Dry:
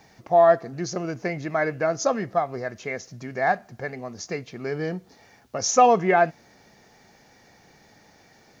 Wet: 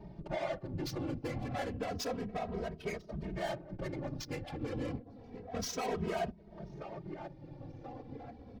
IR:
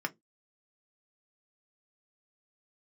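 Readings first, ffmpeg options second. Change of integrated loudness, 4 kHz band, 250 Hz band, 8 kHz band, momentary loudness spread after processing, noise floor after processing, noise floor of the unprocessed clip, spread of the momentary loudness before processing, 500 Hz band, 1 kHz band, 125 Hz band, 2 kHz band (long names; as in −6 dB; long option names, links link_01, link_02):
−16.5 dB, −8.0 dB, −8.5 dB, can't be measured, 12 LU, −54 dBFS, −56 dBFS, 17 LU, −16.0 dB, −19.0 dB, −5.5 dB, −16.5 dB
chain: -filter_complex "[0:a]lowshelf=frequency=330:gain=11.5,aexciter=amount=6.9:drive=5.3:freq=2700,lowpass=frequency=4600:width=0.5412,lowpass=frequency=4600:width=1.3066,alimiter=limit=-8.5dB:level=0:latency=1:release=411,aecho=1:1:1033|2066|3099:0.1|0.041|0.0168,adynamicsmooth=sensitivity=2.5:basefreq=530,asplit=2[link_01][link_02];[1:a]atrim=start_sample=2205[link_03];[link_02][link_03]afir=irnorm=-1:irlink=0,volume=-22.5dB[link_04];[link_01][link_04]amix=inputs=2:normalize=0,asoftclip=type=tanh:threshold=-20.5dB,acompressor=threshold=-46dB:ratio=2.5,afftfilt=real='hypot(re,im)*cos(2*PI*random(0))':imag='hypot(re,im)*sin(2*PI*random(1))':win_size=512:overlap=0.75,asplit=2[link_05][link_06];[link_06]adelay=2.8,afreqshift=-0.3[link_07];[link_05][link_07]amix=inputs=2:normalize=1,volume=11.5dB"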